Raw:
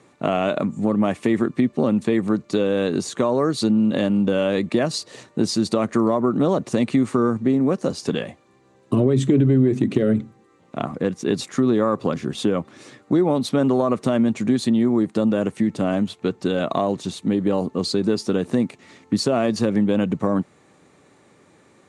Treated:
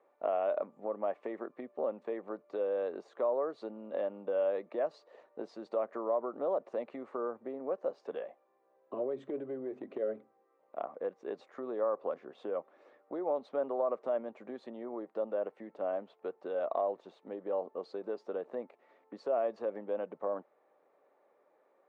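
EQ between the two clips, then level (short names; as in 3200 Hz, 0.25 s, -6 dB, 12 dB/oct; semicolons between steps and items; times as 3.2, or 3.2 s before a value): ladder band-pass 670 Hz, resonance 45%; low shelf 480 Hz -5 dB; 0.0 dB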